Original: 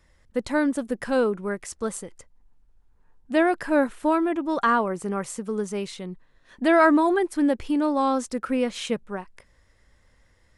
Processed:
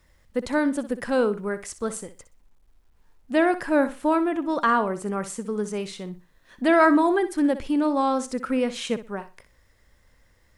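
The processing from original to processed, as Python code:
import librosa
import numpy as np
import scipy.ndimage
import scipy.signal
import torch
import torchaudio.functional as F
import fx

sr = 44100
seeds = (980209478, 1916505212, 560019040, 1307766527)

y = fx.room_flutter(x, sr, wall_m=10.6, rt60_s=0.28)
y = fx.quant_dither(y, sr, seeds[0], bits=12, dither='none')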